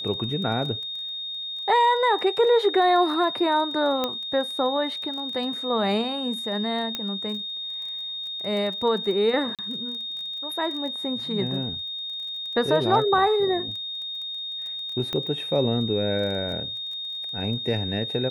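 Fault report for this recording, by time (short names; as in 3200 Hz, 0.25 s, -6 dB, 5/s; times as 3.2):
crackle 16/s -33 dBFS
tone 3700 Hz -30 dBFS
4.04 pop -11 dBFS
6.95 pop -13 dBFS
9.55–9.59 gap 37 ms
15.13 pop -16 dBFS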